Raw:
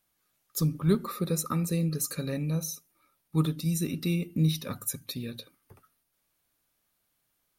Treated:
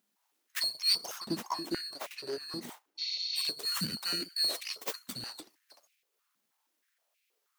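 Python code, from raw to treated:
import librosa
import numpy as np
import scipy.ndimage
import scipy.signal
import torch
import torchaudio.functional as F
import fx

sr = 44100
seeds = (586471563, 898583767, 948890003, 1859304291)

y = fx.band_swap(x, sr, width_hz=2000)
y = np.abs(y)
y = fx.high_shelf(y, sr, hz=2100.0, db=-10.0, at=(1.2, 3.36))
y = fx.spec_repair(y, sr, seeds[0], start_s=3.01, length_s=0.41, low_hz=2000.0, high_hz=7000.0, source='after')
y = fx.filter_held_highpass(y, sr, hz=6.3, low_hz=220.0, high_hz=2400.0)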